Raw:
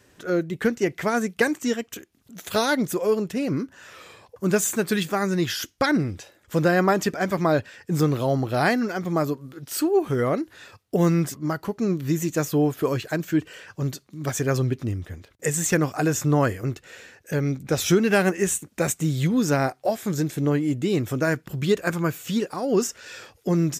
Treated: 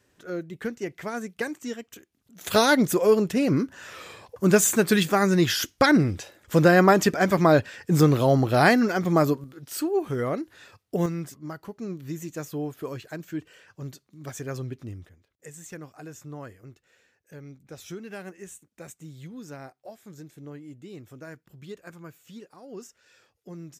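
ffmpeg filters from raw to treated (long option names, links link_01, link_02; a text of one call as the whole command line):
ffmpeg -i in.wav -af "asetnsamples=nb_out_samples=441:pad=0,asendcmd='2.41 volume volume 3dB;9.44 volume volume -4.5dB;11.06 volume volume -10.5dB;15.09 volume volume -19.5dB',volume=-9dB" out.wav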